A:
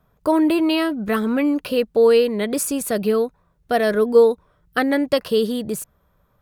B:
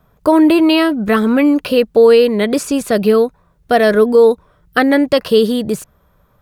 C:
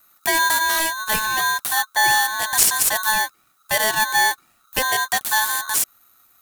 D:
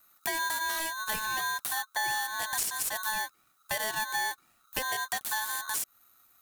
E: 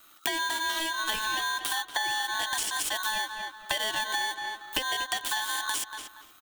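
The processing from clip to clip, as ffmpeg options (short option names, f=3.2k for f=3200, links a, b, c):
-filter_complex "[0:a]acrossover=split=6400[a][b];[b]acompressor=threshold=-41dB:ratio=4:attack=1:release=60[c];[a][c]amix=inputs=2:normalize=0,alimiter=level_in=8.5dB:limit=-1dB:release=50:level=0:latency=1,volume=-1dB"
-af "aexciter=amount=14.7:drive=3.7:freq=5.7k,aeval=exprs='val(0)*sgn(sin(2*PI*1300*n/s))':c=same,volume=-9.5dB"
-af "acompressor=threshold=-23dB:ratio=4,volume=-6.5dB"
-filter_complex "[0:a]equalizer=f=100:t=o:w=0.33:g=-6,equalizer=f=160:t=o:w=0.33:g=-10,equalizer=f=315:t=o:w=0.33:g=8,equalizer=f=3.15k:t=o:w=0.33:g=12,equalizer=f=12.5k:t=o:w=0.33:g=-12,asplit=2[a][b];[b]adelay=235,lowpass=f=3.3k:p=1,volume=-11.5dB,asplit=2[c][d];[d]adelay=235,lowpass=f=3.3k:p=1,volume=0.29,asplit=2[e][f];[f]adelay=235,lowpass=f=3.3k:p=1,volume=0.29[g];[a][c][e][g]amix=inputs=4:normalize=0,acompressor=threshold=-36dB:ratio=6,volume=9dB"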